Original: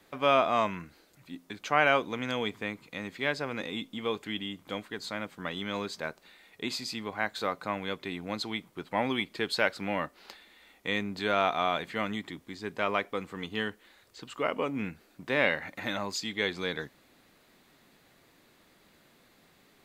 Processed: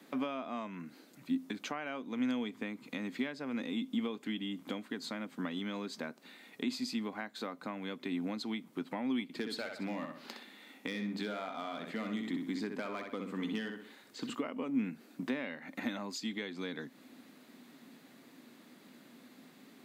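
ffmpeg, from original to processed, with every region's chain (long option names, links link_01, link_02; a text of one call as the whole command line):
ffmpeg -i in.wav -filter_complex "[0:a]asettb=1/sr,asplit=3[link_01][link_02][link_03];[link_01]atrim=end=9.234[link_04];[link_02]atrim=start=9.23:end=14.35,asetpts=PTS-STARTPTS,afade=type=in:duration=0.004:curve=qsin,afade=type=out:start_time=5.116:duration=0.004:curve=qsin,aeval=exprs='clip(val(0),-1,0.0668)':channel_layout=same,asplit=2[link_05][link_06];[link_06]adelay=63,lowpass=frequency=4500:poles=1,volume=-5.5dB,asplit=2[link_07][link_08];[link_08]adelay=63,lowpass=frequency=4500:poles=1,volume=0.32,asplit=2[link_09][link_10];[link_10]adelay=63,lowpass=frequency=4500:poles=1,volume=0.32,asplit=2[link_11][link_12];[link_12]adelay=63,lowpass=frequency=4500:poles=1,volume=0.32[link_13];[link_05][link_07][link_09][link_11][link_13]amix=inputs=5:normalize=0,atrim=end_sample=225792[link_14];[link_03]atrim=start=14.346[link_15];[link_04][link_14]acrossfade=duration=0.004:curve1=hsin:curve2=qsin[link_16];[link_16][link_15]acrossfade=duration=0.004:curve1=qsin:curve2=hsin,highpass=frequency=140:width=0.5412,highpass=frequency=140:width=1.3066,acompressor=threshold=-40dB:ratio=6,equalizer=frequency=250:width=2.8:gain=14,volume=1dB" out.wav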